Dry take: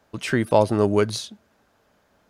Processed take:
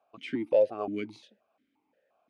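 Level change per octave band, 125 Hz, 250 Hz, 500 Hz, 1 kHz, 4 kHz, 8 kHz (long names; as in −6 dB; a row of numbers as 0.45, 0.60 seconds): −23.0 dB, −11.5 dB, −6.5 dB, −15.0 dB, −16.0 dB, below −25 dB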